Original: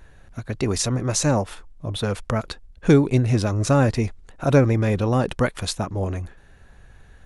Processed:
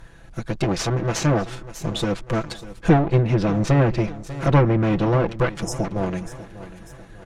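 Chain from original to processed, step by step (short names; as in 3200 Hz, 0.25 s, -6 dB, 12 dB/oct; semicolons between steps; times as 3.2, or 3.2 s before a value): minimum comb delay 6 ms; spectral delete 5.63–5.84, 960–5000 Hz; in parallel at -2.5 dB: compressor, threshold -28 dBFS, peak gain reduction 16 dB; on the sum: feedback echo 0.594 s, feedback 46%, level -16 dB; treble ducked by the level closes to 2400 Hz, closed at -14 dBFS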